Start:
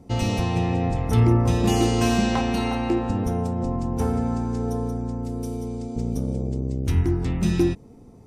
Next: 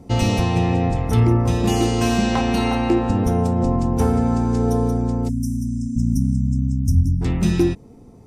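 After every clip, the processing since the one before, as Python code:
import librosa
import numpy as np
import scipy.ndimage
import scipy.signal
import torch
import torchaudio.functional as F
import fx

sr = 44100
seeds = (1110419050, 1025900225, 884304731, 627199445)

y = fx.spec_erase(x, sr, start_s=5.29, length_s=1.92, low_hz=280.0, high_hz=5000.0)
y = fx.rider(y, sr, range_db=3, speed_s=0.5)
y = y * librosa.db_to_amplitude(4.5)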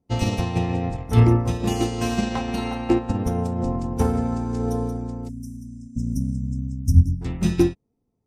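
y = fx.upward_expand(x, sr, threshold_db=-34.0, expansion=2.5)
y = y * librosa.db_to_amplitude(4.5)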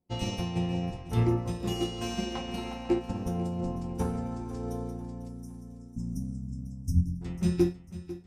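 y = fx.comb_fb(x, sr, f0_hz=180.0, decay_s=0.22, harmonics='all', damping=0.0, mix_pct=80)
y = fx.echo_feedback(y, sr, ms=497, feedback_pct=48, wet_db=-15)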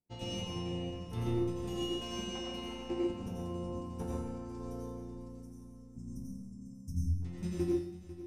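y = fx.comb_fb(x, sr, f0_hz=150.0, decay_s=0.67, harmonics='all', damping=0.0, mix_pct=70)
y = fx.rev_plate(y, sr, seeds[0], rt60_s=0.54, hf_ratio=1.0, predelay_ms=75, drr_db=-2.0)
y = y * librosa.db_to_amplitude(-2.5)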